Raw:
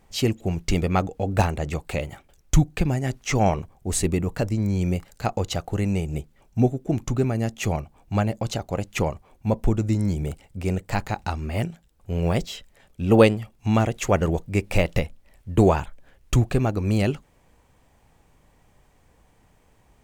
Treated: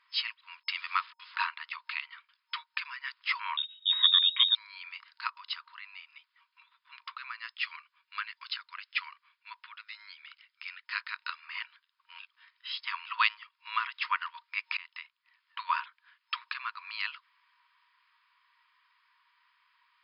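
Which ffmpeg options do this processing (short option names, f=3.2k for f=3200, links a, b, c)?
-filter_complex "[0:a]asettb=1/sr,asplit=3[a][b][c];[a]atrim=end=0.624[d];[b]atrim=start=0.62:end=1.37,asetpts=PTS-STARTPTS,afade=t=in:d=0.004:c=qsin,afade=t=out:st=0.746:d=0.004:c=qsin,acrusher=bits=6:mix=0:aa=0.5[e];[c]atrim=start=1.366[f];[d][e]acrossfade=d=0.004:c1=hsin:c2=qsin[g];[g][f]acrossfade=d=0.004:c1=qsin:c2=hsin,asettb=1/sr,asplit=3[h][i][j];[h]atrim=end=3.574[k];[i]atrim=start=3.57:end=4.55,asetpts=PTS-STARTPTS,afade=t=in:d=0.004:c=qsin,afade=t=out:st=0.976:d=0.004:c=qsin,lowpass=f=3.2k:t=q:w=0.5098,lowpass=f=3.2k:t=q:w=0.6013,lowpass=f=3.2k:t=q:w=0.9,lowpass=f=3.2k:t=q:w=2.563,afreqshift=-3800[l];[j]atrim=start=4.546[m];[k][l]acrossfade=d=0.004:c1=hsin:c2=qsin[n];[n][m]acrossfade=d=0.004:c1=qsin:c2=hsin,asettb=1/sr,asplit=3[o][p][q];[o]atrim=end=5.284[r];[p]atrim=start=5.28:end=6.72,asetpts=PTS-STARTPTS,afade=t=in:d=0.004:c=qsin,afade=t=out:st=1.436:d=0.004:c=qsin,acompressor=threshold=-28dB:ratio=2.5:attack=3.2:release=140:knee=1:detection=peak[s];[q]atrim=start=6.716[t];[r][s]acrossfade=d=0.004:c1=hsin:c2=qsin[u];[u][t]acrossfade=d=0.004:c1=qsin:c2=hsin,asettb=1/sr,asplit=3[v][w][x];[v]atrim=end=7.564[y];[w]atrim=start=7.56:end=11.44,asetpts=PTS-STARTPTS,afade=t=in:d=0.004:c=qsin,afade=t=out:st=3.876:d=0.004:c=qsin,highpass=f=1.3k:w=0.5412,highpass=f=1.3k:w=1.3066[z];[x]atrim=start=11.436[aa];[y][z]acrossfade=d=0.004:c1=hsin:c2=qsin[ab];[ab][aa]acrossfade=d=0.004:c1=qsin:c2=hsin,asplit=4[ac][ad][ae][af];[ac]atrim=end=12.192[ag];[ad]atrim=start=12.188:end=13.062,asetpts=PTS-STARTPTS,areverse[ah];[ae]atrim=start=13.058:end=14.77,asetpts=PTS-STARTPTS,afade=t=out:st=1.708:d=0.004:c=hsin:silence=0.0841395[ai];[af]atrim=start=14.77,asetpts=PTS-STARTPTS,afade=t=in:d=0.81:silence=0.0841395[aj];[ag][ah]acrossfade=d=0.004:c1=hsin:c2=hsin[ak];[ai][aj]concat=n=2:v=0:a=1[al];[ak][al]acrossfade=d=0.004:c1=hsin:c2=hsin,afftfilt=real='re*between(b*sr/4096,930,5200)':imag='im*between(b*sr/4096,930,5200)':win_size=4096:overlap=0.75"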